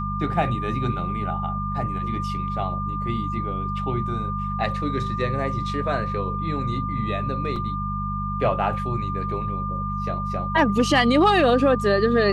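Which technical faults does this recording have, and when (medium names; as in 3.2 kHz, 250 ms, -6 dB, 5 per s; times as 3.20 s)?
hum 50 Hz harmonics 4 -29 dBFS
whine 1.2 kHz -28 dBFS
7.56 s: dropout 3.6 ms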